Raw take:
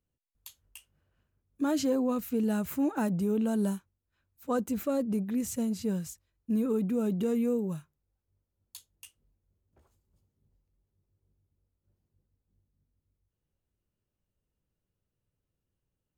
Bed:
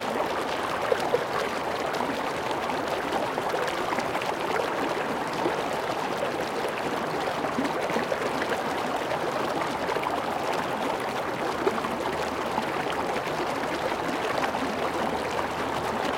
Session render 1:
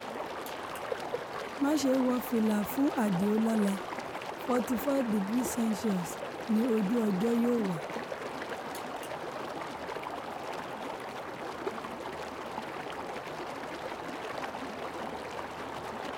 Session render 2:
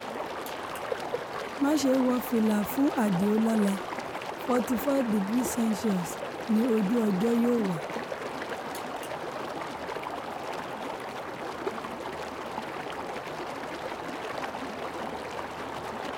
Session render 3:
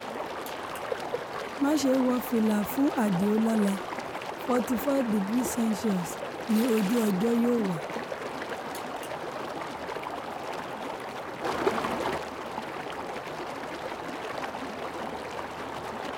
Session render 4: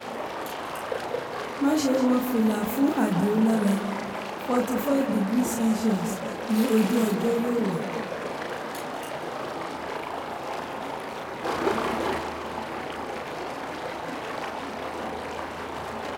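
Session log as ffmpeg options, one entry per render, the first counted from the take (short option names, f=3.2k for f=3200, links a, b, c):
-filter_complex "[1:a]volume=-10.5dB[a];[0:a][a]amix=inputs=2:normalize=0"
-af "volume=3dB"
-filter_complex "[0:a]asettb=1/sr,asplit=3[a][b][c];[a]atrim=end=6.494[d];[b]atrim=start=6.49:end=7.11,asetpts=PTS-STARTPTS,afade=t=in:d=0.004:c=qsin,afade=t=out:st=0.616:d=0.004:c=qsin,highshelf=f=2.8k:g=10.5[e];[c]atrim=start=7.106[f];[d][e]acrossfade=d=0.004:c1=hsin:c2=qsin[g];[g][f]acrossfade=d=0.004:c1=qsin:c2=hsin,asettb=1/sr,asplit=3[h][i][j];[h]atrim=end=11.444[k];[i]atrim=start=11.44:end=12.18,asetpts=PTS-STARTPTS,afade=t=in:d=0.004:c=qsin,afade=t=out:st=0.736:d=0.004:c=qsin,acontrast=65[l];[j]atrim=start=12.176[m];[k][l]acrossfade=d=0.004:c1=hsin:c2=qsin[n];[n][m]acrossfade=d=0.004:c1=qsin:c2=hsin"
-filter_complex "[0:a]asplit=2[a][b];[b]adelay=36,volume=-3dB[c];[a][c]amix=inputs=2:normalize=0,asplit=2[d][e];[e]adelay=191,lowpass=f=4.7k:p=1,volume=-9dB,asplit=2[f][g];[g]adelay=191,lowpass=f=4.7k:p=1,volume=0.46,asplit=2[h][i];[i]adelay=191,lowpass=f=4.7k:p=1,volume=0.46,asplit=2[j][k];[k]adelay=191,lowpass=f=4.7k:p=1,volume=0.46,asplit=2[l][m];[m]adelay=191,lowpass=f=4.7k:p=1,volume=0.46[n];[f][h][j][l][n]amix=inputs=5:normalize=0[o];[d][o]amix=inputs=2:normalize=0"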